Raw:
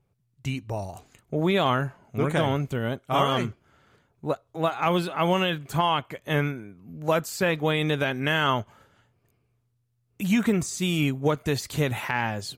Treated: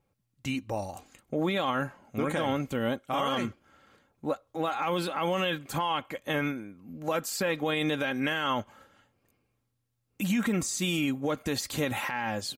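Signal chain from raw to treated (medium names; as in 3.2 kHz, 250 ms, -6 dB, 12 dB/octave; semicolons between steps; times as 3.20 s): bass shelf 130 Hz -6.5 dB; comb 3.7 ms, depth 46%; peak limiter -19.5 dBFS, peak gain reduction 10 dB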